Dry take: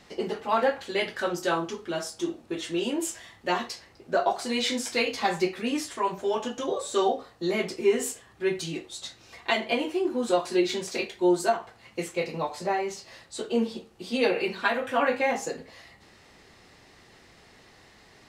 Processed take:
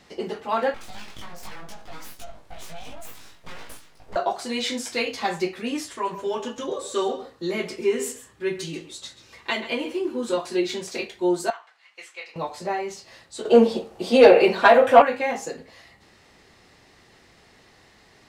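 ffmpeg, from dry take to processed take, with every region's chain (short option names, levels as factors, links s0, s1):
-filter_complex "[0:a]asettb=1/sr,asplit=3[s0][s1][s2];[s0]atrim=end=0.744[s3];[s1]atrim=start=0.74:end=4.16,asetpts=PTS-STARTPTS,afade=t=in:d=0.004:c=qsin,afade=t=out:st=3.416:d=0.004:c=qsin,acompressor=threshold=0.0178:ratio=8:attack=3.2:release=140:knee=1:detection=peak,aeval=exprs='abs(val(0))':c=same,asplit=2[s4][s5];[s5]adelay=19,volume=0.794[s6];[s4][s6]amix=inputs=2:normalize=0,atrim=end_sample=150822[s7];[s2]atrim=start=4.156[s8];[s3][s7]acrossfade=d=0.004:c1=hsin:c2=qsin[s9];[s9][s8]acrossfade=d=0.004:c1=qsin:c2=hsin,asettb=1/sr,asplit=3[s10][s11][s12];[s10]atrim=end=5.924[s13];[s11]atrim=start=5.92:end=10.38,asetpts=PTS-STARTPTS,afade=t=in:d=0.004:c=qsin,afade=t=out:st=4.456:d=0.004:c=qsin,bandreject=f=720:w=5.4,aecho=1:1:135:0.2,atrim=end_sample=196686[s14];[s12]atrim=start=10.376[s15];[s13][s14]acrossfade=d=0.004:c1=hsin:c2=qsin[s16];[s16][s15]acrossfade=d=0.004:c1=qsin:c2=hsin,asettb=1/sr,asplit=3[s17][s18][s19];[s17]atrim=end=11.504[s20];[s18]atrim=start=11.5:end=12.36,asetpts=PTS-STARTPTS,afade=t=in:d=0.004:c=qsin,afade=t=out:st=0.856:d=0.004:c=qsin,highpass=1400,aemphasis=mode=reproduction:type=50fm[s21];[s19]atrim=start=12.356[s22];[s20][s21]acrossfade=d=0.004:c1=hsin:c2=qsin[s23];[s23][s22]acrossfade=d=0.004:c1=qsin:c2=hsin,asettb=1/sr,asplit=3[s24][s25][s26];[s24]atrim=end=13.454[s27];[s25]atrim=start=13.45:end=15.02,asetpts=PTS-STARTPTS,afade=t=in:d=0.004:c=qsin,afade=t=out:st=1.566:d=0.004:c=qsin,equalizer=f=630:t=o:w=1.3:g=11.5,acontrast=62[s28];[s26]atrim=start=15.016[s29];[s27][s28]acrossfade=d=0.004:c1=hsin:c2=qsin[s30];[s30][s29]acrossfade=d=0.004:c1=qsin:c2=hsin"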